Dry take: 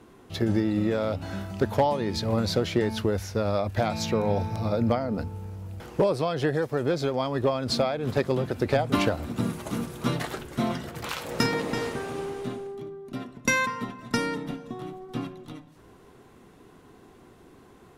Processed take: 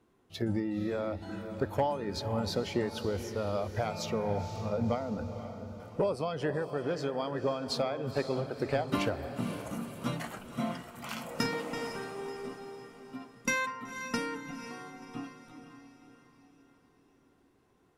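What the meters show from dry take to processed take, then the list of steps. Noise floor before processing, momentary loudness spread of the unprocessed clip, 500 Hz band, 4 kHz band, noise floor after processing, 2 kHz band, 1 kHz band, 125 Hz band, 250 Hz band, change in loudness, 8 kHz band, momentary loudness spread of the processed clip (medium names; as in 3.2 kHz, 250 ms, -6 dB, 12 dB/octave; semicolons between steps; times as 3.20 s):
-53 dBFS, 12 LU, -6.5 dB, -6.5 dB, -67 dBFS, -6.0 dB, -6.0 dB, -8.0 dB, -7.0 dB, -6.5 dB, -6.0 dB, 13 LU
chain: spectral noise reduction 10 dB; echo that smears into a reverb 508 ms, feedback 47%, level -10 dB; trim -6.5 dB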